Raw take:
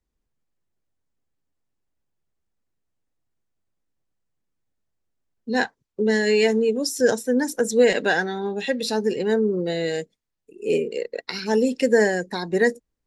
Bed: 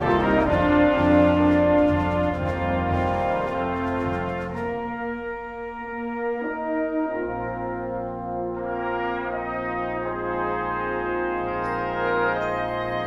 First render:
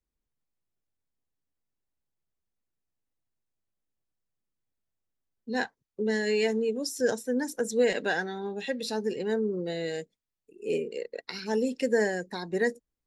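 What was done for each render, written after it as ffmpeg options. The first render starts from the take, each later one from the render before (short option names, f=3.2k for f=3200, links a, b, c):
-af "volume=-7.5dB"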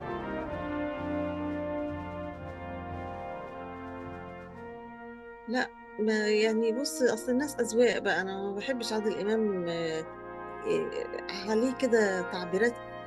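-filter_complex "[1:a]volume=-15.5dB[a];[0:a][a]amix=inputs=2:normalize=0"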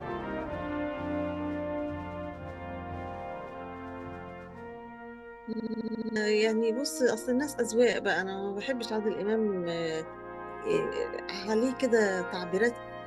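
-filter_complex "[0:a]asettb=1/sr,asplit=3[a][b][c];[a]atrim=end=8.854[d];[b]atrim=start=8.85:end=9.64,asetpts=PTS-STARTPTS,afade=t=in:d=0.004:c=qsin,afade=t=out:st=0.786:d=0.004:c=qsin,adynamicsmooth=sensitivity=1.5:basefreq=2.7k[e];[c]atrim=start=9.636[f];[d][e]acrossfade=d=0.004:c1=hsin:c2=qsin[g];[g][f]acrossfade=d=0.004:c1=qsin:c2=hsin,asettb=1/sr,asplit=3[h][i][j];[h]atrim=end=10.714[k];[i]atrim=start=10.71:end=11.11,asetpts=PTS-STARTPTS,afade=t=in:d=0.004:c=qsin,afade=t=out:st=0.396:d=0.004:c=qsin,asplit=2[l][m];[m]adelay=19,volume=-3dB[n];[l][n]amix=inputs=2:normalize=0,atrim=end_sample=17640[o];[j]atrim=start=11.106[p];[k][o]acrossfade=d=0.004:c1=hsin:c2=qsin[q];[q][p]acrossfade=d=0.004:c1=qsin:c2=hsin,asplit=11[r][s][t][u][v][w][x][y][z][aa][ab];[r]atrim=end=5.532[ac];[s]atrim=start=5.458:end=5.532[ad];[t]atrim=start=5.458:end=5.532[ae];[u]atrim=start=5.458:end=5.532[af];[v]atrim=start=5.458:end=5.532[ag];[w]atrim=start=5.458:end=5.532[ah];[x]atrim=start=5.458:end=5.532[ai];[y]atrim=start=5.458:end=5.532[aj];[z]atrim=start=5.458:end=5.532[ak];[aa]atrim=start=5.458:end=5.532[al];[ab]atrim=start=6.158[am];[ac][ad]acrossfade=d=0.004:c1=hsin:c2=hsin[an];[an][ae]acrossfade=d=0.004:c1=hsin:c2=hsin[ao];[ao][af]acrossfade=d=0.004:c1=hsin:c2=hsin[ap];[ap][ag]acrossfade=d=0.004:c1=hsin:c2=hsin[aq];[aq][ah]acrossfade=d=0.004:c1=hsin:c2=hsin[ar];[ar][ai]acrossfade=d=0.004:c1=hsin:c2=hsin[as];[as][aj]acrossfade=d=0.004:c1=hsin:c2=hsin[at];[at][ak]acrossfade=d=0.004:c1=hsin:c2=hsin[au];[au][al]acrossfade=d=0.004:c1=hsin:c2=hsin[av];[av][am]acrossfade=d=0.004:c1=hsin:c2=hsin"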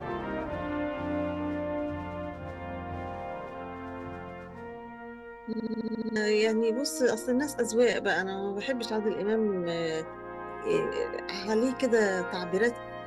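-af "aeval=exprs='0.211*(cos(1*acos(clip(val(0)/0.211,-1,1)))-cos(1*PI/2))+0.00841*(cos(5*acos(clip(val(0)/0.211,-1,1)))-cos(5*PI/2))':c=same"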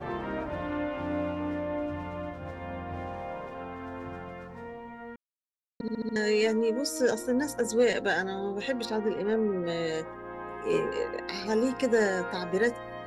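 -filter_complex "[0:a]asplit=3[a][b][c];[a]atrim=end=5.16,asetpts=PTS-STARTPTS,afade=t=out:st=5.156:d=0.004:c=hsin[d];[b]atrim=start=5.16:end=5.8,asetpts=PTS-STARTPTS,volume=0[e];[c]atrim=start=5.8,asetpts=PTS-STARTPTS,afade=t=in:d=0.004:c=hsin[f];[d][e][f]concat=n=3:v=0:a=1"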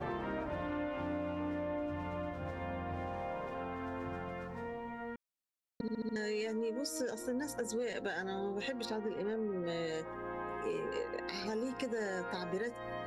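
-af "alimiter=limit=-22.5dB:level=0:latency=1:release=270,acompressor=threshold=-37dB:ratio=2.5"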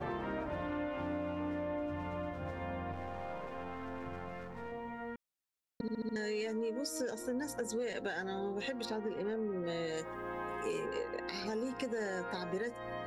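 -filter_complex "[0:a]asettb=1/sr,asplit=3[a][b][c];[a]atrim=end=2.924[d];[b]atrim=start=2.92:end=4.72,asetpts=PTS-STARTPTS,afade=t=in:d=0.004:c=qsin,afade=t=out:st=1.796:d=0.004:c=qsin,aeval=exprs='if(lt(val(0),0),0.447*val(0),val(0))':c=same[e];[c]atrim=start=4.716[f];[d][e]acrossfade=d=0.004:c1=hsin:c2=qsin[g];[g][f]acrossfade=d=0.004:c1=qsin:c2=hsin,asettb=1/sr,asplit=3[h][i][j];[h]atrim=end=9.974[k];[i]atrim=start=9.97:end=10.86,asetpts=PTS-STARTPTS,afade=t=in:d=0.004:c=qsin,afade=t=out:st=0.886:d=0.004:c=qsin,highshelf=f=3.9k:g=11.5[l];[j]atrim=start=10.856[m];[k][l]acrossfade=d=0.004:c1=hsin:c2=qsin[n];[n][m]acrossfade=d=0.004:c1=qsin:c2=hsin"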